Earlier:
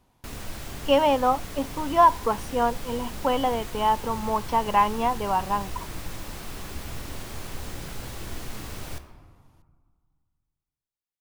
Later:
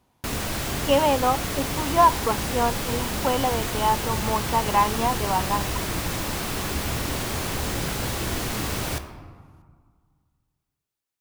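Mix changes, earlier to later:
background +11.0 dB; master: add high-pass 68 Hz 6 dB/octave

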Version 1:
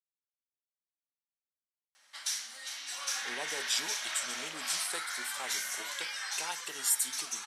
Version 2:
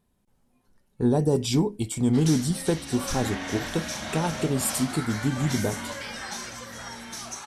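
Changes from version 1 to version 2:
speech: entry -2.25 s; master: remove high-pass 1.5 kHz 12 dB/octave

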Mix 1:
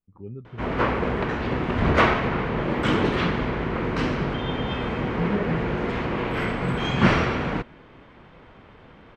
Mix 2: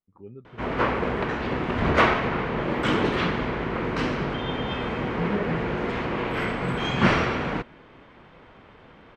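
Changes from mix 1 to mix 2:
speech: add bass shelf 210 Hz -7.5 dB; master: add bass shelf 200 Hz -4.5 dB

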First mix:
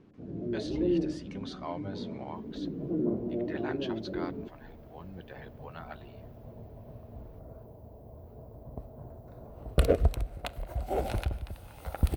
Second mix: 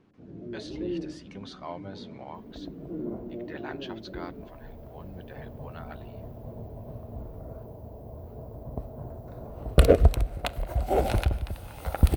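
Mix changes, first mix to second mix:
first sound -5.0 dB; second sound +6.5 dB

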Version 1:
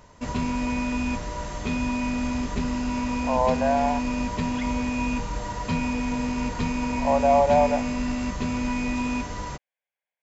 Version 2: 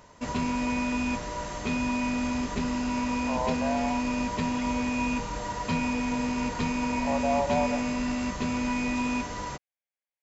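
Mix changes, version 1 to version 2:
speech -8.0 dB; master: add bass shelf 120 Hz -8.5 dB

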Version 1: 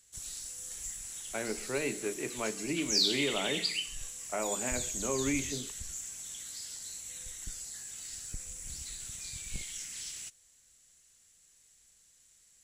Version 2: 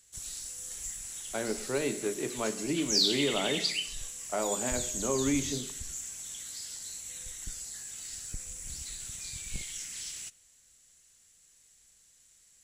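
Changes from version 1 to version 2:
speech: add resonant high shelf 3.4 kHz +10.5 dB, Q 3; reverb: on, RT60 0.95 s

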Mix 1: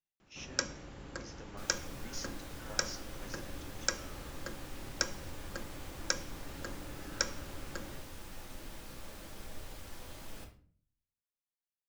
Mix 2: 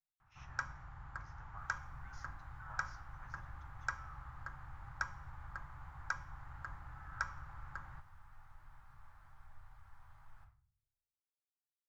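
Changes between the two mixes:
second sound -9.5 dB; master: add FFT filter 130 Hz 0 dB, 220 Hz -22 dB, 510 Hz -25 dB, 810 Hz 0 dB, 1.3 kHz +3 dB, 1.9 kHz -5 dB, 2.7 kHz -17 dB, 5.6 kHz -21 dB

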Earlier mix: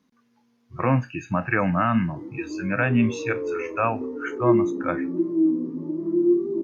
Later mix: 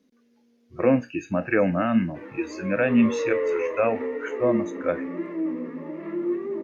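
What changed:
background: remove resonant low-pass 340 Hz, resonance Q 4.1; master: add graphic EQ 125/250/500/1000 Hz -11/+4/+9/-11 dB

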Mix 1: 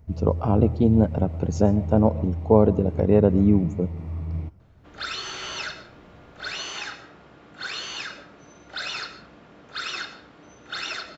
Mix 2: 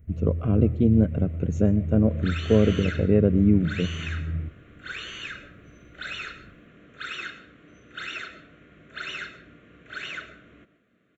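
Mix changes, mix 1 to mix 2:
second sound: entry -2.75 s; master: add static phaser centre 2.1 kHz, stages 4

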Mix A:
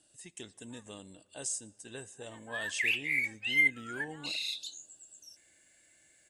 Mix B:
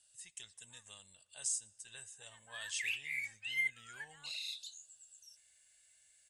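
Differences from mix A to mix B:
background -5.0 dB; master: add amplifier tone stack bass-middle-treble 10-0-10

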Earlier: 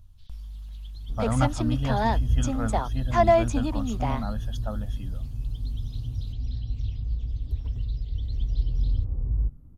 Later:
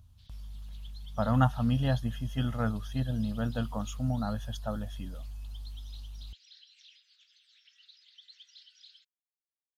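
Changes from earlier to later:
second sound: muted; master: add high-pass 60 Hz

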